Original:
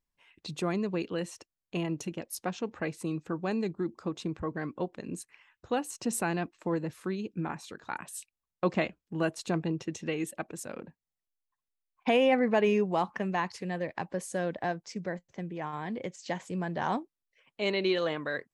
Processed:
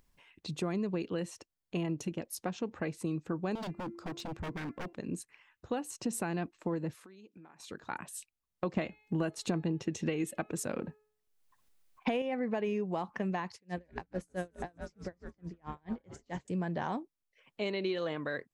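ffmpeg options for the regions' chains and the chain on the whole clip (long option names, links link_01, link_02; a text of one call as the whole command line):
ffmpeg -i in.wav -filter_complex "[0:a]asettb=1/sr,asplit=3[link_01][link_02][link_03];[link_01]atrim=end=3.554[link_04];[link_02]atrim=start=3.55:end=4.93,asetpts=PTS-STARTPTS,afade=type=in:duration=0.004:curve=qsin,afade=type=out:start_time=1.376:duration=0.004:curve=qsin,equalizer=frequency=4600:width=1.5:gain=4,bandreject=frequency=342.7:width_type=h:width=4,bandreject=frequency=685.4:width_type=h:width=4,bandreject=frequency=1028.1:width_type=h:width=4,bandreject=frequency=1370.8:width_type=h:width=4,bandreject=frequency=1713.5:width_type=h:width=4,bandreject=frequency=2056.2:width_type=h:width=4,bandreject=frequency=2398.9:width_type=h:width=4,bandreject=frequency=2741.6:width_type=h:width=4,aeval=exprs='0.0224*(abs(mod(val(0)/0.0224+3,4)-2)-1)':channel_layout=same[link_05];[link_03]atrim=start=4.926[link_06];[link_04][link_05]acrossfade=duration=0.004:curve1=hsin:curve2=qsin[link_07];[link_07][link_06]acrossfade=duration=0.004:curve1=qsin:curve2=hsin,asettb=1/sr,asplit=3[link_08][link_09][link_10];[link_08]atrim=end=6.954[link_11];[link_09]atrim=start=6.95:end=7.6,asetpts=PTS-STARTPTS,afade=type=in:duration=0.004:curve=qsin,afade=type=out:start_time=0.646:duration=0.004:curve=qsin,highpass=frequency=530:poles=1,acompressor=threshold=-51dB:ratio=10:attack=3.2:release=140:knee=1:detection=peak[link_12];[link_10]atrim=start=7.596[link_13];[link_11][link_12]acrossfade=duration=0.004:curve1=hsin:curve2=qsin[link_14];[link_14][link_13]acrossfade=duration=0.004:curve1=qsin:curve2=hsin,asettb=1/sr,asplit=3[link_15][link_16][link_17];[link_15]atrim=end=8.774[link_18];[link_16]atrim=start=8.77:end=12.22,asetpts=PTS-STARTPTS,afade=type=in:duration=0.004:curve=qsin,afade=type=out:start_time=3.446:duration=0.004:curve=qsin,bandreject=frequency=425.3:width_type=h:width=4,bandreject=frequency=850.6:width_type=h:width=4,bandreject=frequency=1275.9:width_type=h:width=4,bandreject=frequency=1701.2:width_type=h:width=4,bandreject=frequency=2126.5:width_type=h:width=4,bandreject=frequency=2551.8:width_type=h:width=4,bandreject=frequency=2977.1:width_type=h:width=4,bandreject=frequency=3402.4:width_type=h:width=4,bandreject=frequency=3827.7:width_type=h:width=4,bandreject=frequency=4253:width_type=h:width=4,acontrast=65[link_19];[link_17]atrim=start=12.216[link_20];[link_18][link_19]acrossfade=duration=0.004:curve1=hsin:curve2=qsin[link_21];[link_21][link_20]acrossfade=duration=0.004:curve1=qsin:curve2=hsin,asettb=1/sr,asplit=3[link_22][link_23][link_24];[link_22]atrim=end=13.534[link_25];[link_23]atrim=start=13.53:end=16.48,asetpts=PTS-STARTPTS,afade=type=in:duration=0.004:curve=qsin,afade=type=out:start_time=2.946:duration=0.004:curve=qsin,asplit=9[link_26][link_27][link_28][link_29][link_30][link_31][link_32][link_33][link_34];[link_27]adelay=151,afreqshift=-120,volume=-10.5dB[link_35];[link_28]adelay=302,afreqshift=-240,volume=-14.5dB[link_36];[link_29]adelay=453,afreqshift=-360,volume=-18.5dB[link_37];[link_30]adelay=604,afreqshift=-480,volume=-22.5dB[link_38];[link_31]adelay=755,afreqshift=-600,volume=-26.6dB[link_39];[link_32]adelay=906,afreqshift=-720,volume=-30.6dB[link_40];[link_33]adelay=1057,afreqshift=-840,volume=-34.6dB[link_41];[link_34]adelay=1208,afreqshift=-960,volume=-38.6dB[link_42];[link_26][link_35][link_36][link_37][link_38][link_39][link_40][link_41][link_42]amix=inputs=9:normalize=0,atrim=end_sample=130095,aeval=exprs='val(0)*pow(10,-36*(0.5-0.5*cos(2*PI*4.6*n/s))/20)':channel_layout=same[link_43];[link_24]atrim=start=16.476[link_44];[link_25][link_43]acrossfade=duration=0.004:curve1=hsin:curve2=qsin[link_45];[link_45][link_44]acrossfade=duration=0.004:curve1=qsin:curve2=hsin,acompressor=threshold=-30dB:ratio=6,lowshelf=frequency=470:gain=4.5,acompressor=mode=upward:threshold=-54dB:ratio=2.5,volume=-2.5dB" out.wav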